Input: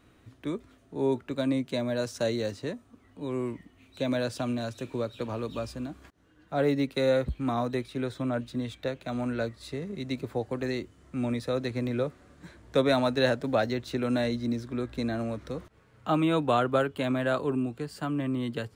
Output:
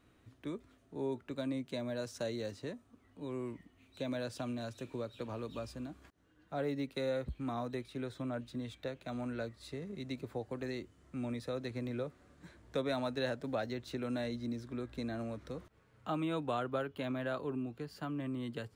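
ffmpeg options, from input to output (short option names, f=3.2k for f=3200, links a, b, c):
-filter_complex "[0:a]asettb=1/sr,asplit=3[a][b][c];[a]atrim=end=16.694[d];[b]atrim=start=16.69:end=18.2,asetpts=PTS-STARTPTS,afade=t=in:d=0.004:c=qsin,afade=t=out:st=1.506:d=0.004:c=qsin,equalizer=f=8.2k:w=4.8:g=-13.5[e];[c]atrim=start=18.196[f];[d][e]acrossfade=d=0.004:c1=hsin:c2=qsin[g];[g][f]acrossfade=d=0.004:c1=qsin:c2=hsin,acompressor=threshold=-31dB:ratio=1.5,volume=-7dB"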